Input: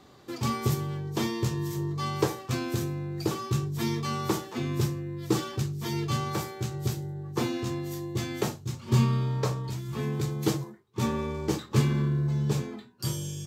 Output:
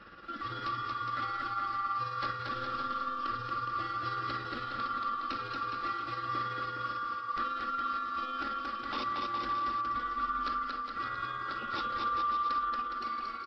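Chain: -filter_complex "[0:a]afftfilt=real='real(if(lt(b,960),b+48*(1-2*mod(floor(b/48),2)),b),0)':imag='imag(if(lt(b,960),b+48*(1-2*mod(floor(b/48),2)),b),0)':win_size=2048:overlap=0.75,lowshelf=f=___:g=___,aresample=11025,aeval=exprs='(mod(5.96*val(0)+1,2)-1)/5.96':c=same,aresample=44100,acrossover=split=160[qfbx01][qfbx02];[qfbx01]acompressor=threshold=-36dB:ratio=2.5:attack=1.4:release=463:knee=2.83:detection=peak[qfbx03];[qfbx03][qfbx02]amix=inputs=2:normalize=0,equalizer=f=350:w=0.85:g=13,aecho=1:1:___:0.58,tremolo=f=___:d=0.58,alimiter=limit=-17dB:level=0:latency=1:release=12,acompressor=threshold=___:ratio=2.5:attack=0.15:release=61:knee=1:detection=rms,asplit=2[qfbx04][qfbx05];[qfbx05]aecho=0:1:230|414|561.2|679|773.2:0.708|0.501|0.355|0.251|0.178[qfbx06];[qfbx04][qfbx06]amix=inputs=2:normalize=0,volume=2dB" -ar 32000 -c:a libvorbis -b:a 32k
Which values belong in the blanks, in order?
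72, 4, 3.6, 18, -40dB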